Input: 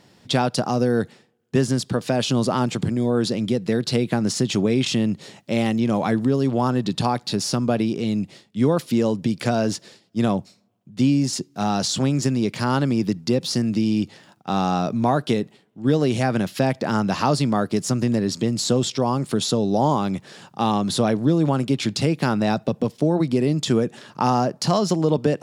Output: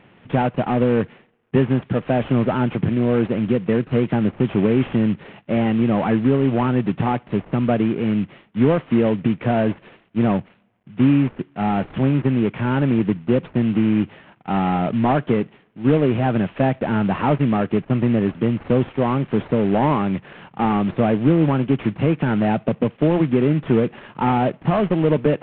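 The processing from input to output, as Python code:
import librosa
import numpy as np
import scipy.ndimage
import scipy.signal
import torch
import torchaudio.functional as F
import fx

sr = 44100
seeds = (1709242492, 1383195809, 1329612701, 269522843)

y = fx.cvsd(x, sr, bps=16000)
y = y * librosa.db_to_amplitude(3.5)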